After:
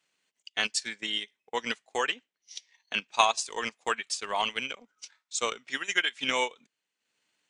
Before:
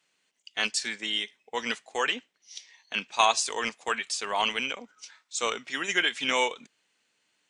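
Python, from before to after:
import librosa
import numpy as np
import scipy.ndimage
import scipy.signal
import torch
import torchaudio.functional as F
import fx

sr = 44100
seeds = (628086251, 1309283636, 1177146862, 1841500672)

y = fx.low_shelf(x, sr, hz=460.0, db=-10.0, at=(5.77, 6.17))
y = fx.transient(y, sr, attack_db=5, sustain_db=-9)
y = y * 10.0 ** (-3.5 / 20.0)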